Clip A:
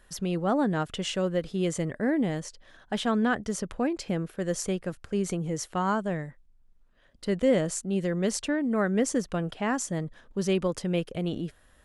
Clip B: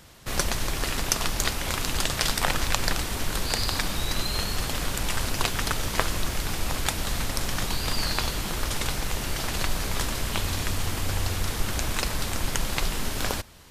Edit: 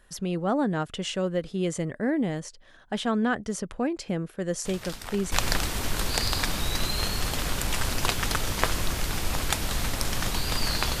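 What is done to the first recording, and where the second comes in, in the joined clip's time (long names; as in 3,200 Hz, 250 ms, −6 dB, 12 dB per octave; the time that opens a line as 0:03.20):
clip A
0:04.65: mix in clip B from 0:02.01 0.67 s −14 dB
0:05.32: continue with clip B from 0:02.68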